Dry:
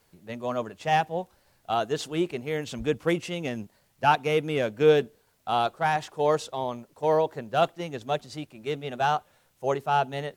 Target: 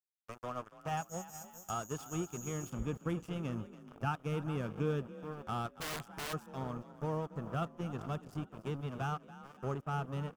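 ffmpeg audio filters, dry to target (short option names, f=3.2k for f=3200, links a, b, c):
-filter_complex "[0:a]asubboost=boost=7:cutoff=220,asplit=2[a][b];[b]adelay=420,lowpass=f=2k:p=1,volume=-15dB,asplit=2[c][d];[d]adelay=420,lowpass=f=2k:p=1,volume=0.26,asplit=2[e][f];[f]adelay=420,lowpass=f=2k:p=1,volume=0.26[g];[c][e][g]amix=inputs=3:normalize=0[h];[a][h]amix=inputs=2:normalize=0,asettb=1/sr,asplit=3[i][j][k];[i]atrim=end=0.974[l];[j]atrim=start=0.97:end=2.7,asetpts=PTS-STARTPTS,afade=t=in:d=0.004:c=qsin,afade=t=out:st=1.726:d=0.004:c=qsin,aeval=exprs='val(0)+0.02*sin(2*PI*6700*n/s)':c=same[m];[k]atrim=start=2.696[n];[l][m]acrossfade=d=0.004:c1=hsin:c2=qsin[o];[o][n]acrossfade=d=0.004:c1=qsin:c2=hsin,aeval=exprs='sgn(val(0))*max(abs(val(0))-0.0211,0)':c=same,equalizer=f=1.25k:t=o:w=0.33:g=10,equalizer=f=2k:t=o:w=0.33:g=-8,equalizer=f=4k:t=o:w=0.33:g=-12,acompressor=threshold=-48dB:ratio=2,asplit=2[p][q];[q]asplit=4[r][s][t][u];[r]adelay=283,afreqshift=34,volume=-16dB[v];[s]adelay=566,afreqshift=68,volume=-23.1dB[w];[t]adelay=849,afreqshift=102,volume=-30.3dB[x];[u]adelay=1132,afreqshift=136,volume=-37.4dB[y];[v][w][x][y]amix=inputs=4:normalize=0[z];[p][z]amix=inputs=2:normalize=0,asplit=3[aa][ab][ac];[aa]afade=t=out:st=5.8:d=0.02[ad];[ab]aeval=exprs='(mod(63.1*val(0)+1,2)-1)/63.1':c=same,afade=t=in:st=5.8:d=0.02,afade=t=out:st=6.32:d=0.02[ae];[ac]afade=t=in:st=6.32:d=0.02[af];[ad][ae][af]amix=inputs=3:normalize=0,volume=2dB"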